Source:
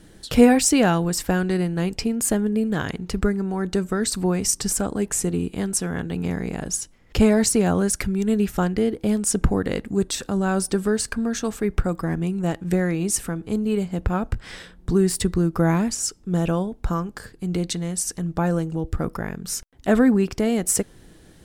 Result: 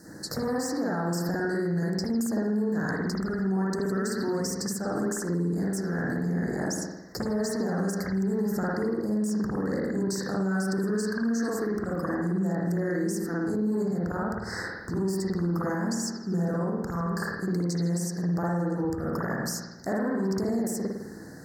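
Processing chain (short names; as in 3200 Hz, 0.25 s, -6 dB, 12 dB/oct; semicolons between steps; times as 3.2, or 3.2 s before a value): soft clip -14 dBFS, distortion -13 dB; elliptic band-stop 1800–4600 Hz, stop band 40 dB; high shelf 2600 Hz +8 dB; compressor, threshold -27 dBFS, peak gain reduction 14.5 dB; reverb RT60 0.95 s, pre-delay 52 ms, DRR -7 dB; limiter -20 dBFS, peak gain reduction 10.5 dB; HPF 130 Hz 12 dB/oct; bell 9800 Hz -8.5 dB 0.41 oct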